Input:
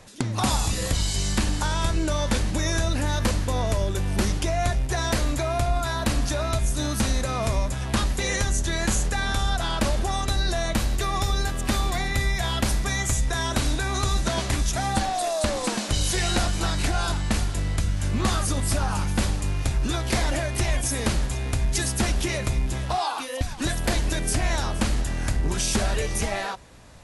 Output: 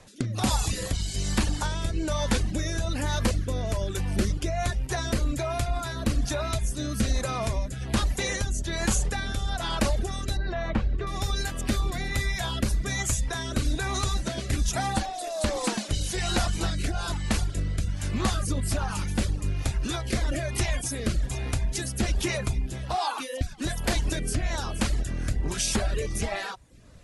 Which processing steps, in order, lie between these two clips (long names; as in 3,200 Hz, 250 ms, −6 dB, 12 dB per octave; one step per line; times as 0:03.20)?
0:10.37–0:11.07: low-pass filter 2,100 Hz 12 dB per octave
reverb reduction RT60 0.55 s
rotating-speaker cabinet horn 1.2 Hz